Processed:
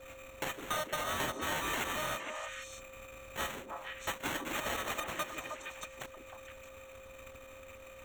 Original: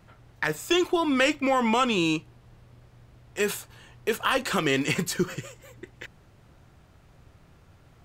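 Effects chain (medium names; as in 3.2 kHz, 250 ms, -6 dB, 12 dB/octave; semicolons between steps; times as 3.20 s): bit-reversed sample order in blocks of 256 samples; sample-and-hold 9×; repeats whose band climbs or falls 155 ms, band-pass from 320 Hz, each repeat 1.4 oct, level -3.5 dB; compression 2:1, threshold -44 dBFS, peak gain reduction 14.5 dB; whistle 530 Hz -51 dBFS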